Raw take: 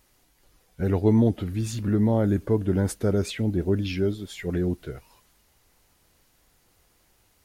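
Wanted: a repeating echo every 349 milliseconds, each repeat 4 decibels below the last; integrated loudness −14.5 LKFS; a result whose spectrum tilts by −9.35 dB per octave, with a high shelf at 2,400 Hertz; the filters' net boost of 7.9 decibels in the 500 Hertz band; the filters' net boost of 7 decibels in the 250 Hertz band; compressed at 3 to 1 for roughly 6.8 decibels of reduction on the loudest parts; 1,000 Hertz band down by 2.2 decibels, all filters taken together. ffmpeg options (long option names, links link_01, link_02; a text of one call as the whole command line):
ffmpeg -i in.wav -af "equalizer=frequency=250:width_type=o:gain=7,equalizer=frequency=500:width_type=o:gain=9,equalizer=frequency=1000:width_type=o:gain=-7.5,highshelf=frequency=2400:gain=-6,acompressor=threshold=-18dB:ratio=3,aecho=1:1:349|698|1047|1396|1745|2094|2443|2792|3141:0.631|0.398|0.25|0.158|0.0994|0.0626|0.0394|0.0249|0.0157,volume=7dB" out.wav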